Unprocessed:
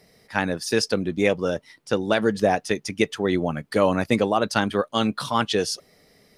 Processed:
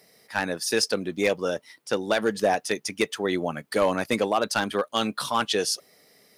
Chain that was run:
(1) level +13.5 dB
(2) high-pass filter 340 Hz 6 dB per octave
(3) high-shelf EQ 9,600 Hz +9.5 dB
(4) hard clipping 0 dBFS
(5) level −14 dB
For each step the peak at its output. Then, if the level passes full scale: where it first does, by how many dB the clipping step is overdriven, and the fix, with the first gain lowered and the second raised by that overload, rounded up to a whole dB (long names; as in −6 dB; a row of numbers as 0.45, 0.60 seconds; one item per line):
+9.5, +9.5, +9.5, 0.0, −14.0 dBFS
step 1, 9.5 dB
step 1 +3.5 dB, step 5 −4 dB